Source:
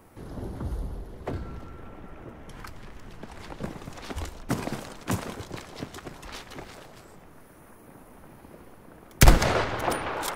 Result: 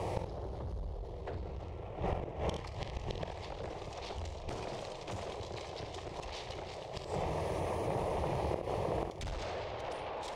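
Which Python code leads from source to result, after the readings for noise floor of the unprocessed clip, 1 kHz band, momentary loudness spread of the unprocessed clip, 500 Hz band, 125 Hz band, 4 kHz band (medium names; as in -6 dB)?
-51 dBFS, -6.0 dB, 22 LU, -3.0 dB, -9.0 dB, -10.0 dB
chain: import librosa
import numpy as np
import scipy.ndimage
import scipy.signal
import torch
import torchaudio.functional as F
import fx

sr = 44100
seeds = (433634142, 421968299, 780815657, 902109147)

y = scipy.signal.sosfilt(scipy.signal.butter(2, 55.0, 'highpass', fs=sr, output='sos'), x)
y = fx.dynamic_eq(y, sr, hz=150.0, q=1.9, threshold_db=-47.0, ratio=4.0, max_db=-6)
y = fx.rider(y, sr, range_db=4, speed_s=0.5)
y = fx.fixed_phaser(y, sr, hz=600.0, stages=4)
y = fx.tube_stage(y, sr, drive_db=34.0, bias=0.5)
y = fx.gate_flip(y, sr, shuts_db=-37.0, range_db=-25)
y = fx.air_absorb(y, sr, metres=120.0)
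y = fx.room_early_taps(y, sr, ms=(47, 70), db=(-13.0, -12.5))
y = fx.env_flatten(y, sr, amount_pct=50)
y = y * librosa.db_to_amplitude(15.0)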